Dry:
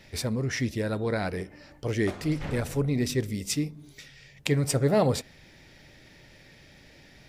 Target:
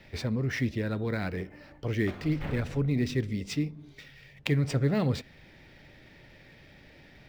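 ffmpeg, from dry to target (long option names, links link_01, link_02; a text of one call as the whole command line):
ffmpeg -i in.wav -filter_complex "[0:a]lowpass=3500,acrossover=split=360|1300|2000[link_01][link_02][link_03][link_04];[link_02]acompressor=threshold=-39dB:ratio=6[link_05];[link_04]acrusher=bits=3:mode=log:mix=0:aa=0.000001[link_06];[link_01][link_05][link_03][link_06]amix=inputs=4:normalize=0" out.wav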